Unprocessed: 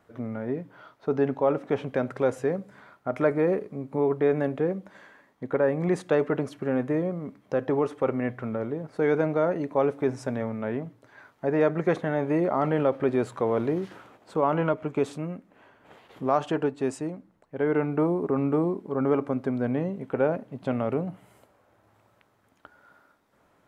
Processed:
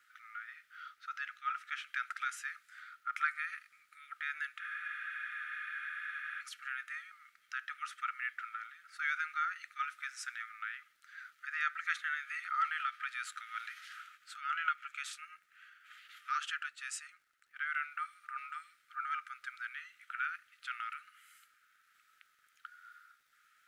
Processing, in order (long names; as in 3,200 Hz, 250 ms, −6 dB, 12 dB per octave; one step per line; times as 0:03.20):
linear-phase brick-wall high-pass 1,200 Hz
surface crackle 110 per second −67 dBFS
frozen spectrum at 0:04.63, 1.77 s
level +2 dB